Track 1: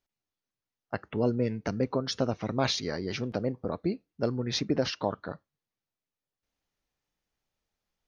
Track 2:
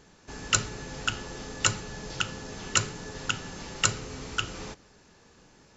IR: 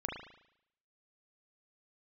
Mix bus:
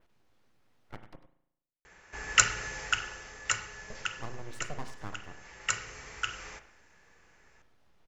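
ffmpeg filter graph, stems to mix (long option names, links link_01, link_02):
-filter_complex "[0:a]lowpass=frequency=1400:poles=1,acompressor=mode=upward:threshold=-34dB:ratio=2.5,aeval=exprs='abs(val(0))':channel_layout=same,volume=-12.5dB,asplit=3[link_01][link_02][link_03];[link_01]atrim=end=1.16,asetpts=PTS-STARTPTS,afade=type=out:start_time=1.156:duration=0.004:curve=hsin[link_04];[link_02]atrim=start=1.16:end=3.9,asetpts=PTS-STARTPTS,volume=0[link_05];[link_03]atrim=start=3.9,asetpts=PTS-STARTPTS,afade=type=in:duration=0.004:curve=hsin[link_06];[link_04][link_05][link_06]concat=n=3:v=0:a=1,asplit=3[link_07][link_08][link_09];[link_08]volume=-8dB[link_10];[link_09]volume=-10dB[link_11];[1:a]equalizer=frequency=125:width_type=o:width=1:gain=-7,equalizer=frequency=250:width_type=o:width=1:gain=-11,equalizer=frequency=2000:width_type=o:width=1:gain=11,equalizer=frequency=4000:width_type=o:width=1:gain=-8,adelay=1850,volume=6.5dB,afade=type=out:start_time=2.64:duration=0.59:silence=0.398107,afade=type=out:start_time=4.08:duration=0.37:silence=0.398107,afade=type=in:start_time=5.26:duration=0.62:silence=0.334965,asplit=2[link_12][link_13];[link_13]volume=-8dB[link_14];[2:a]atrim=start_sample=2205[link_15];[link_10][link_14]amix=inputs=2:normalize=0[link_16];[link_16][link_15]afir=irnorm=-1:irlink=0[link_17];[link_11]aecho=0:1:99:1[link_18];[link_07][link_12][link_17][link_18]amix=inputs=4:normalize=0,adynamicequalizer=threshold=0.00355:dfrequency=5700:dqfactor=1.1:tfrequency=5700:tqfactor=1.1:attack=5:release=100:ratio=0.375:range=3.5:mode=boostabove:tftype=bell"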